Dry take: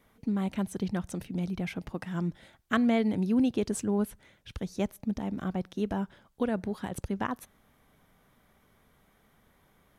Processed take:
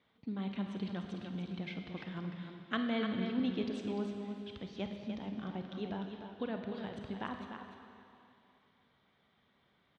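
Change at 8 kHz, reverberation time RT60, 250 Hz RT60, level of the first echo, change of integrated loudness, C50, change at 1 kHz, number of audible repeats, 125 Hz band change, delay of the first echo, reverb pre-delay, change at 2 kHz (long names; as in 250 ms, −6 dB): below −20 dB, 2.7 s, 2.5 s, −14.5 dB, −8.0 dB, 3.0 dB, −7.0 dB, 2, −8.0 dB, 51 ms, 27 ms, −5.5 dB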